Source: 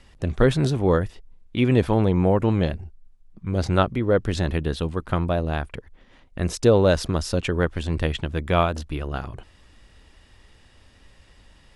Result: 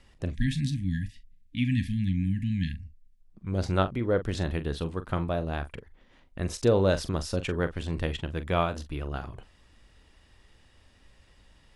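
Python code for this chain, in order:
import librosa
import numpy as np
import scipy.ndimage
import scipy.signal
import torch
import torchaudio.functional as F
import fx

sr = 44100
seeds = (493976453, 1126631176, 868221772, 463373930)

y = fx.spec_erase(x, sr, start_s=0.31, length_s=2.89, low_hz=300.0, high_hz=1600.0)
y = fx.doubler(y, sr, ms=42.0, db=-12)
y = y * librosa.db_to_amplitude(-6.0)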